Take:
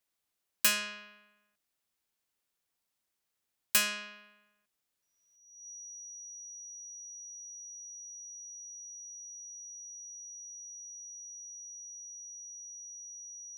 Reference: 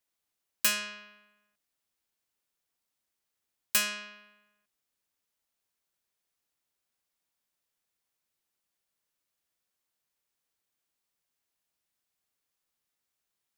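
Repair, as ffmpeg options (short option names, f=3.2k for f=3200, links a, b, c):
-af "bandreject=f=5.8k:w=30,asetnsamples=n=441:p=0,asendcmd='5.36 volume volume 6dB',volume=0dB"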